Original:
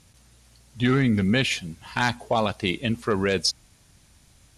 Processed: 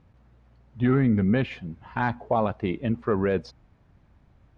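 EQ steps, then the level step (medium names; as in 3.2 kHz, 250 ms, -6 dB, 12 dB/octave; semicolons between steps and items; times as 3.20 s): low-pass 1.3 kHz 12 dB/octave; 0.0 dB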